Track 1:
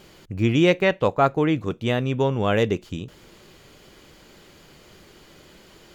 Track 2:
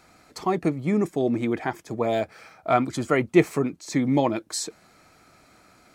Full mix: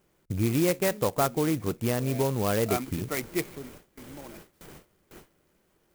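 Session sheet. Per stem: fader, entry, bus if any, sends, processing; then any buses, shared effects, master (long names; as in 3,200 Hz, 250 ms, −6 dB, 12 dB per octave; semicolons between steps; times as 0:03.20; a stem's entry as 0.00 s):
+3.0 dB, 0.00 s, no send, low-pass filter 4,000 Hz 12 dB per octave; downward compressor 2 to 1, threshold −32 dBFS, peak gain reduction 10.5 dB
0:01.87 −22 dB → 0:02.15 −11 dB → 0:03.51 −11 dB → 0:03.92 −22.5 dB, 0.00 s, no send, parametric band 2,200 Hz +11.5 dB 0.49 octaves; rotating-speaker cabinet horn 0.6 Hz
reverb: not used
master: noise gate with hold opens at −35 dBFS; converter with an unsteady clock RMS 0.072 ms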